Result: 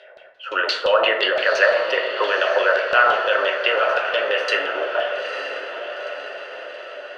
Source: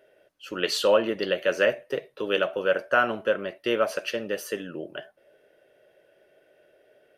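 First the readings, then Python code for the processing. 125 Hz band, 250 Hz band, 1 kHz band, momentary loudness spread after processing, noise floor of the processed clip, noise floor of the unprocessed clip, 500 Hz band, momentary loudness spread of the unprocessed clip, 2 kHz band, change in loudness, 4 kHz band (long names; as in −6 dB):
below −10 dB, −6.0 dB, +10.5 dB, 16 LU, −45 dBFS, −63 dBFS, +5.5 dB, 13 LU, +11.0 dB, +6.5 dB, +8.5 dB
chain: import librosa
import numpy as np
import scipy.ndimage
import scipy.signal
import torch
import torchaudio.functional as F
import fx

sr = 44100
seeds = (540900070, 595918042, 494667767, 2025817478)

p1 = scipy.signal.sosfilt(scipy.signal.butter(4, 550.0, 'highpass', fs=sr, output='sos'), x)
p2 = fx.over_compress(p1, sr, threshold_db=-36.0, ratio=-1.0)
p3 = p1 + (p2 * 10.0 ** (3.0 / 20.0))
p4 = fx.filter_lfo_lowpass(p3, sr, shape='saw_down', hz=5.8, low_hz=730.0, high_hz=4300.0, q=3.0)
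p5 = fx.echo_diffused(p4, sr, ms=912, feedback_pct=55, wet_db=-8)
p6 = fx.rev_plate(p5, sr, seeds[0], rt60_s=0.97, hf_ratio=0.45, predelay_ms=0, drr_db=4.0)
y = p6 * 10.0 ** (1.5 / 20.0)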